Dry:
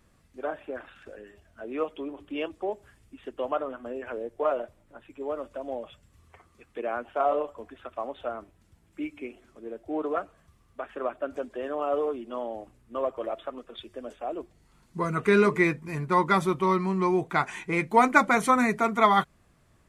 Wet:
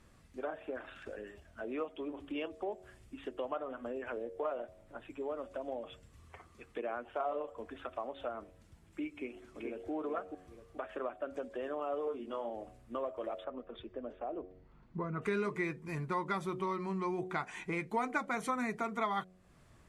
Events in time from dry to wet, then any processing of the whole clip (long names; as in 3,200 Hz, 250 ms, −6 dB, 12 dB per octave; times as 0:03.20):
0:09.11–0:09.91: delay throw 430 ms, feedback 20%, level −3.5 dB
0:12.05–0:12.50: double-tracking delay 22 ms −4 dB
0:13.44–0:15.22: head-to-tape spacing loss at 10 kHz 36 dB
whole clip: Bessel low-pass filter 11,000 Hz; hum removal 92.17 Hz, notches 8; downward compressor 2.5 to 1, threshold −40 dBFS; level +1 dB